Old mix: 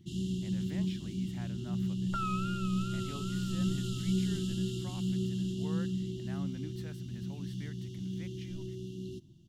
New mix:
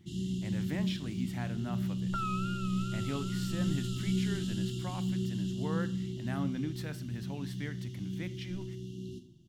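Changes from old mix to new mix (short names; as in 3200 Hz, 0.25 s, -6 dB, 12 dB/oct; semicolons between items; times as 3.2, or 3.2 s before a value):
speech +7.5 dB; first sound -3.0 dB; reverb: on, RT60 0.45 s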